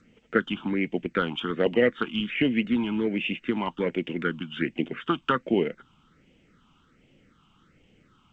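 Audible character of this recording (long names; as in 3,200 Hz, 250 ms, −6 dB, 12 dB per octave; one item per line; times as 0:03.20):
phaser sweep stages 6, 1.3 Hz, lowest notch 490–1,300 Hz
G.722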